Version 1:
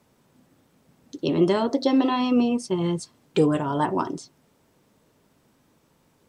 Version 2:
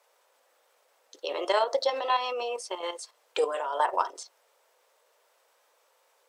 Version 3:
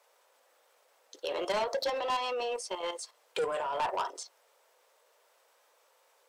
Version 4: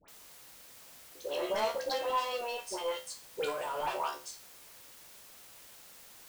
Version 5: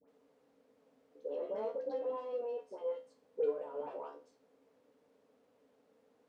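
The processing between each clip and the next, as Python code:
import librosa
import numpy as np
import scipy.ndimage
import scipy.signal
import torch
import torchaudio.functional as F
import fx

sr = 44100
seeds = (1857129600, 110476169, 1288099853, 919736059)

y1 = scipy.signal.sosfilt(scipy.signal.ellip(4, 1.0, 70, 500.0, 'highpass', fs=sr, output='sos'), x)
y1 = fx.level_steps(y1, sr, step_db=9)
y1 = F.gain(torch.from_numpy(y1), 4.5).numpy()
y2 = 10.0 ** (-26.0 / 20.0) * np.tanh(y1 / 10.0 ** (-26.0 / 20.0))
y3 = fx.comb_fb(y2, sr, f0_hz=73.0, decay_s=0.29, harmonics='all', damping=0.0, mix_pct=90)
y3 = fx.quant_dither(y3, sr, seeds[0], bits=10, dither='triangular')
y3 = fx.dispersion(y3, sr, late='highs', ms=83.0, hz=1300.0)
y3 = F.gain(torch.from_numpy(y3), 6.0).numpy()
y4 = fx.double_bandpass(y3, sr, hz=350.0, octaves=0.7)
y4 = F.gain(torch.from_numpy(y4), 4.5).numpy()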